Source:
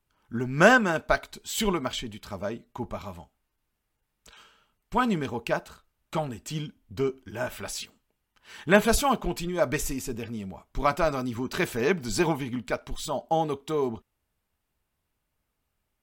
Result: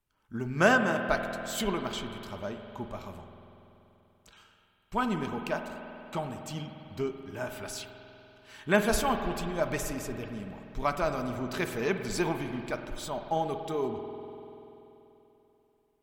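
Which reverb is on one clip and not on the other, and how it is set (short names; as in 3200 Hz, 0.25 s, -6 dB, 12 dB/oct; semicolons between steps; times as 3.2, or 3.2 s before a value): spring tank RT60 3.3 s, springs 48 ms, chirp 60 ms, DRR 6 dB; gain -5 dB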